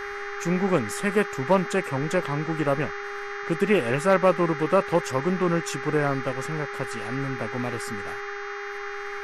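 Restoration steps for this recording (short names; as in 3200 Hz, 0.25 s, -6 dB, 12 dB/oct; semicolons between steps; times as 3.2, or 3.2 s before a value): clip repair -10 dBFS; de-hum 404.7 Hz, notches 16; noise print and reduce 30 dB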